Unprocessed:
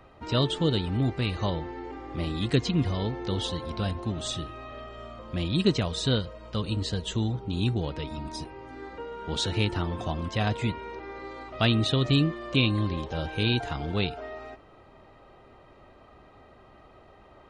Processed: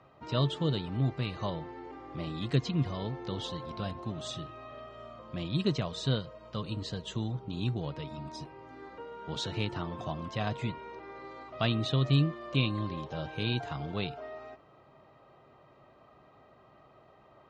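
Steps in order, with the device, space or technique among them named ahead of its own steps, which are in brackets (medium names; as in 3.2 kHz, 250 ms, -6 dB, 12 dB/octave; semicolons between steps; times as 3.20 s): car door speaker (cabinet simulation 81–7400 Hz, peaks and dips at 82 Hz -4 dB, 140 Hz +8 dB, 630 Hz +4 dB, 1.1 kHz +5 dB); trim -7 dB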